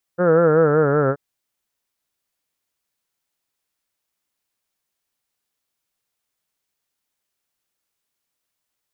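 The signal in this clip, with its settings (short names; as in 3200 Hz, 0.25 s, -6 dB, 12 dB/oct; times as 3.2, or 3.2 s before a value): formant-synthesis vowel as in heard, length 0.98 s, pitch 173 Hz, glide -4 st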